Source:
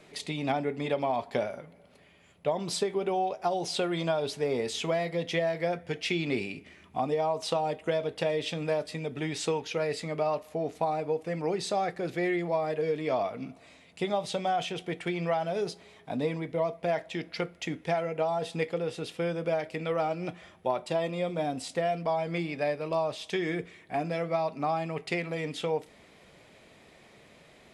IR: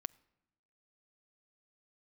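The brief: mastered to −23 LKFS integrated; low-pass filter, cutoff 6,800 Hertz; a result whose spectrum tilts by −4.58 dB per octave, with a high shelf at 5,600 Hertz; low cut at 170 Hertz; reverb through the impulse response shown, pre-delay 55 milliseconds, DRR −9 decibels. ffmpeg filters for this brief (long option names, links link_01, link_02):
-filter_complex "[0:a]highpass=170,lowpass=6800,highshelf=frequency=5600:gain=5.5,asplit=2[link_01][link_02];[1:a]atrim=start_sample=2205,adelay=55[link_03];[link_02][link_03]afir=irnorm=-1:irlink=0,volume=12dB[link_04];[link_01][link_04]amix=inputs=2:normalize=0,volume=-1dB"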